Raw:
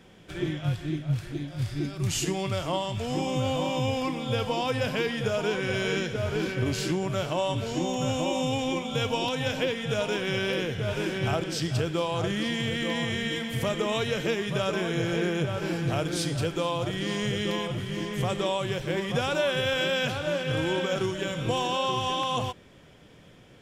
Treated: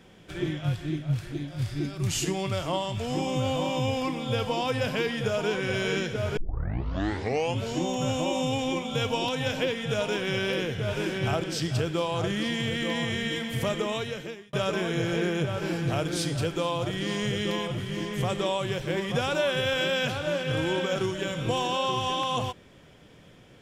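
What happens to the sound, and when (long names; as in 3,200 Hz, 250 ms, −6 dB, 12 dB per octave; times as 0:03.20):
0:06.37: tape start 1.26 s
0:13.73–0:14.53: fade out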